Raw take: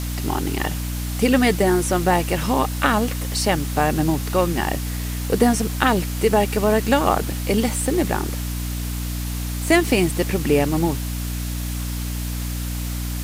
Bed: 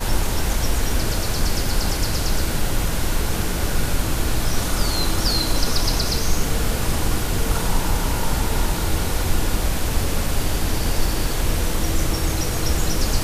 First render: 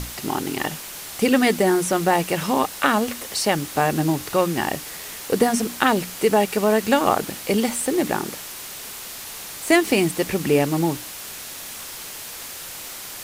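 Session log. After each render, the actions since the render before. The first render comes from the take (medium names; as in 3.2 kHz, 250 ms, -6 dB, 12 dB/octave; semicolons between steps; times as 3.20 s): hum notches 60/120/180/240/300 Hz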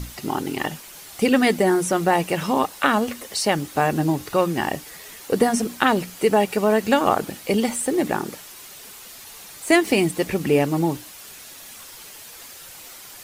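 noise reduction 8 dB, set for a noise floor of -36 dBFS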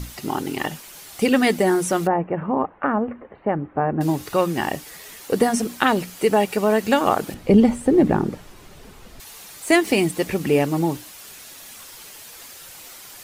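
2.07–4.01 s: Gaussian low-pass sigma 5.6 samples; 7.34–9.20 s: tilt EQ -4 dB/octave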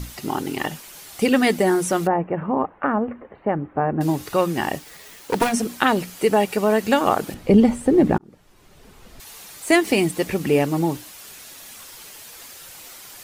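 4.78–5.52 s: self-modulated delay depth 0.78 ms; 8.18–9.31 s: fade in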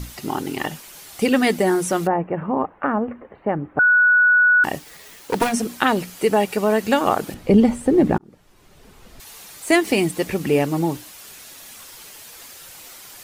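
3.79–4.64 s: bleep 1.47 kHz -11 dBFS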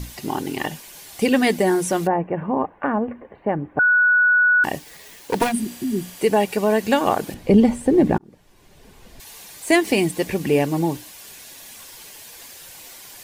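5.54–6.14 s: spectral replace 420–8100 Hz after; band-stop 1.3 kHz, Q 6.7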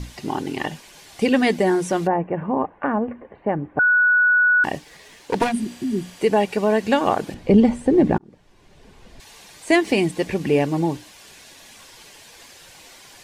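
distance through air 55 m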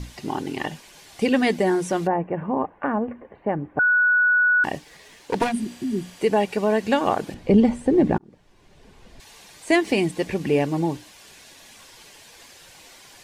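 trim -2 dB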